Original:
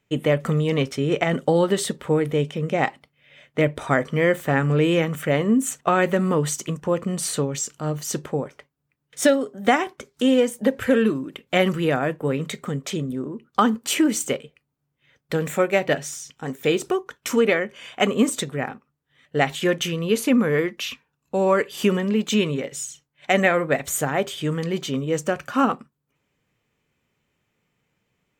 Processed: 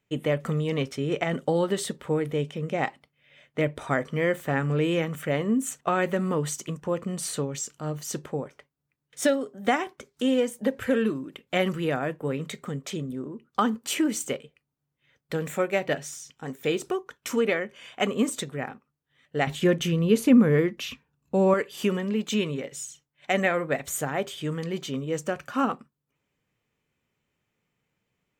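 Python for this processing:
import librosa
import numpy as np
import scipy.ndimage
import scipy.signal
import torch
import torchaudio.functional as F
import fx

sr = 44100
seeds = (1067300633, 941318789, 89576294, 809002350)

y = fx.low_shelf(x, sr, hz=360.0, db=11.0, at=(19.47, 21.54))
y = F.gain(torch.from_numpy(y), -5.5).numpy()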